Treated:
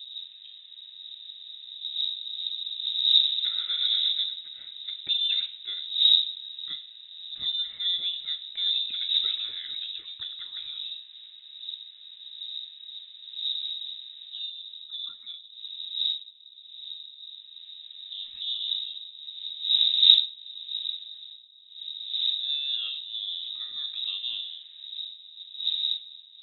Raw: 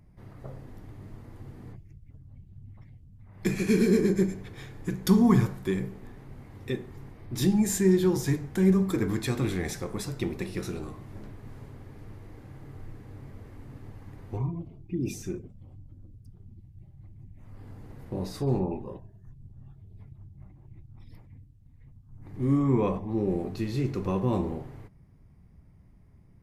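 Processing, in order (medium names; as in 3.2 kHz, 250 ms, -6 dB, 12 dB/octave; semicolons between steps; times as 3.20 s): wind noise 150 Hz -26 dBFS; frequency inversion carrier 3.8 kHz; treble shelf 2.5 kHz +9.5 dB; trim -13.5 dB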